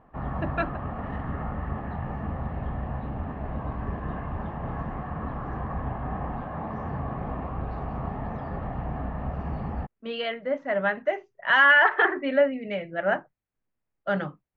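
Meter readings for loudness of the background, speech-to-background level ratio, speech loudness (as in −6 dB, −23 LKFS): −33.5 LKFS, 10.0 dB, −23.5 LKFS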